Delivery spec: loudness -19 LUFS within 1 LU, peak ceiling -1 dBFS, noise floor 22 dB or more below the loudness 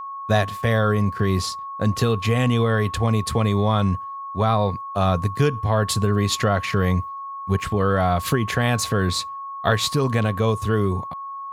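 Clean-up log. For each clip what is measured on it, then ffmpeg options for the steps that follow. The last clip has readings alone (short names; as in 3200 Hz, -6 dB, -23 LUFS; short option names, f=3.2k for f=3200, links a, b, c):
steady tone 1100 Hz; tone level -30 dBFS; loudness -21.5 LUFS; peak -5.5 dBFS; loudness target -19.0 LUFS
-> -af "bandreject=f=1.1k:w=30"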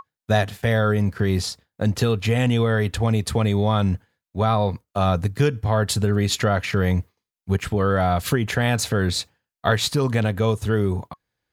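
steady tone none; loudness -22.0 LUFS; peak -6.0 dBFS; loudness target -19.0 LUFS
-> -af "volume=3dB"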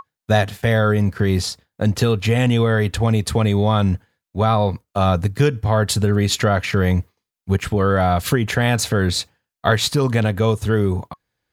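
loudness -19.0 LUFS; peak -3.0 dBFS; noise floor -86 dBFS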